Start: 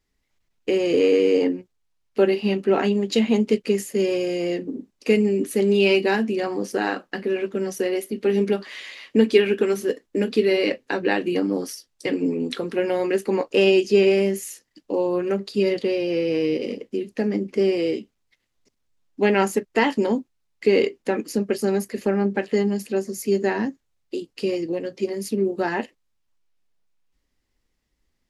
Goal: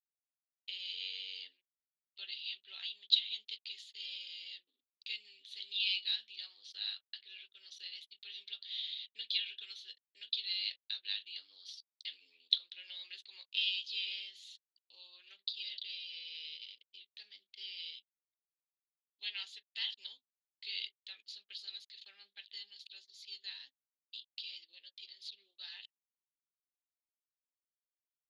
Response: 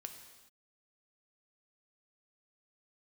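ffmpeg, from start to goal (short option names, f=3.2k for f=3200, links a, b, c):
-af "anlmdn=0.1,asuperpass=centerf=3700:order=4:qfactor=4.5,volume=6dB"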